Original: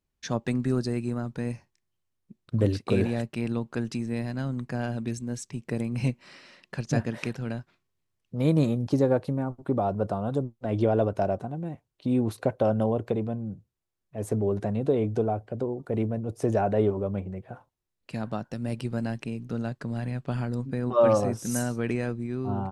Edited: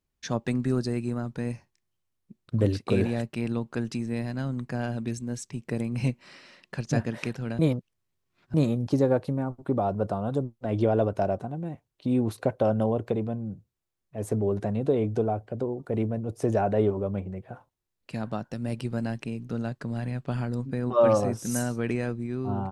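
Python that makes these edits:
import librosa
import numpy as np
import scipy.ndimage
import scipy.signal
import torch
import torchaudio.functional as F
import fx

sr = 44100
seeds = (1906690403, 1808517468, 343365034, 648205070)

y = fx.edit(x, sr, fx.reverse_span(start_s=7.59, length_s=0.95), tone=tone)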